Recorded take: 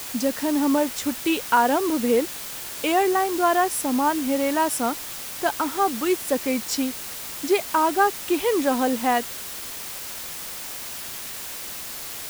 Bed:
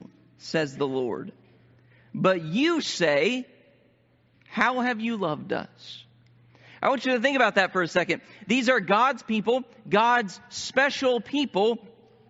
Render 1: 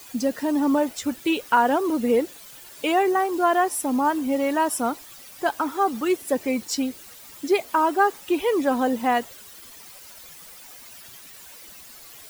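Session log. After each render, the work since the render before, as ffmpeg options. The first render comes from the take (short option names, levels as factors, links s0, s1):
-af "afftdn=nr=13:nf=-35"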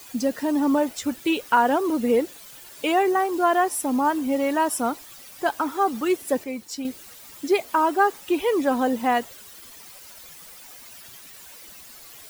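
-filter_complex "[0:a]asplit=3[s0][s1][s2];[s0]atrim=end=6.442[s3];[s1]atrim=start=6.438:end=6.852,asetpts=PTS-STARTPTS,volume=0.447[s4];[s2]atrim=start=6.848[s5];[s3][s4]acrossfade=d=0.004:c1=hsin:c2=hsin[s6];[s6][s5]acrossfade=d=0.004:c1=hsin:c2=hsin"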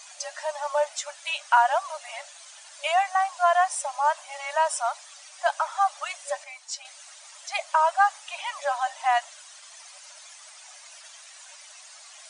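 -af "afftfilt=real='re*between(b*sr/4096,570,9800)':imag='im*between(b*sr/4096,570,9800)':win_size=4096:overlap=0.75,equalizer=f=6300:t=o:w=0.28:g=4.5"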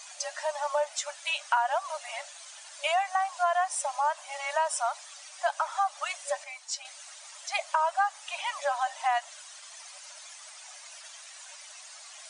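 -af "acompressor=threshold=0.0562:ratio=2.5"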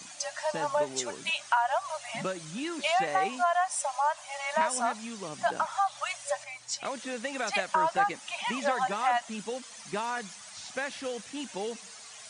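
-filter_complex "[1:a]volume=0.237[s0];[0:a][s0]amix=inputs=2:normalize=0"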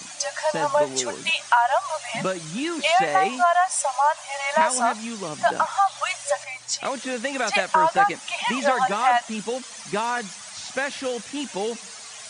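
-af "volume=2.37"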